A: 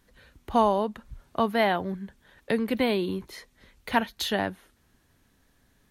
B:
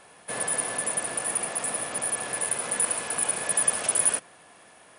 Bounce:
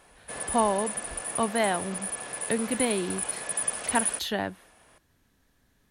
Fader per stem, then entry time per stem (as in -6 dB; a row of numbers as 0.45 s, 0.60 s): -2.5 dB, -5.5 dB; 0.00 s, 0.00 s